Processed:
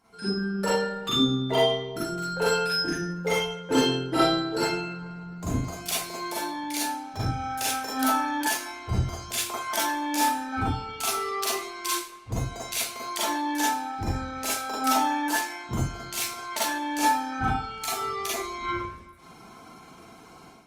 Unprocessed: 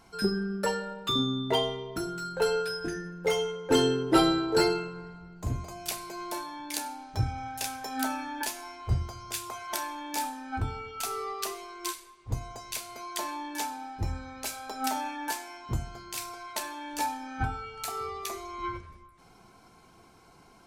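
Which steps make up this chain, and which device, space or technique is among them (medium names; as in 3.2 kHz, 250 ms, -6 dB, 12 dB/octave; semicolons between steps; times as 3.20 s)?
far-field microphone of a smart speaker (reverberation RT60 0.35 s, pre-delay 37 ms, DRR -6.5 dB; high-pass 110 Hz 6 dB/octave; level rider gain up to 10.5 dB; trim -8.5 dB; Opus 32 kbps 48 kHz)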